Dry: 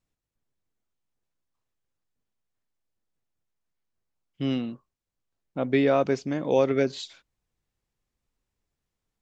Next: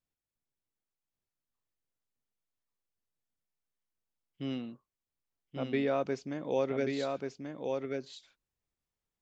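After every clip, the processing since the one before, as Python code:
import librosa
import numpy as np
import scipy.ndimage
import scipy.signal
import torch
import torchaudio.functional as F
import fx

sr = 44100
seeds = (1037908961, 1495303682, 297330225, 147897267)

y = fx.low_shelf(x, sr, hz=150.0, db=-3.5)
y = y + 10.0 ** (-4.0 / 20.0) * np.pad(y, (int(1135 * sr / 1000.0), 0))[:len(y)]
y = y * 10.0 ** (-8.5 / 20.0)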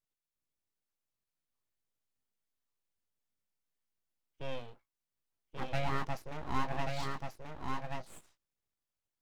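y = fx.doubler(x, sr, ms=19.0, db=-6.5)
y = np.abs(y)
y = y * 10.0 ** (-1.5 / 20.0)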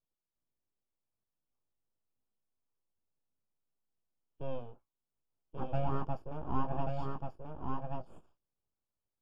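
y = scipy.signal.lfilter(np.full(22, 1.0 / 22), 1.0, x)
y = y * 10.0 ** (2.5 / 20.0)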